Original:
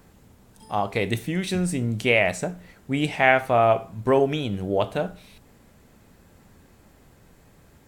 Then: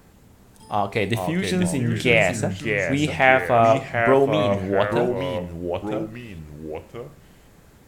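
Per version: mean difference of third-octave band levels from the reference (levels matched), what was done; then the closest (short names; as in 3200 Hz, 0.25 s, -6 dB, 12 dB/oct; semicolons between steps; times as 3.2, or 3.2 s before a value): 5.5 dB: echoes that change speed 0.349 s, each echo -2 st, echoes 2, each echo -6 dB; gain +2 dB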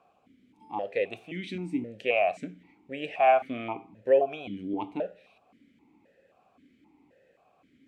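8.5 dB: vowel sequencer 3.8 Hz; gain +4.5 dB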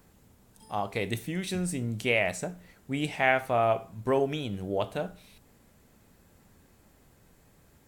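1.0 dB: high shelf 6400 Hz +5.5 dB; gain -6.5 dB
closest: third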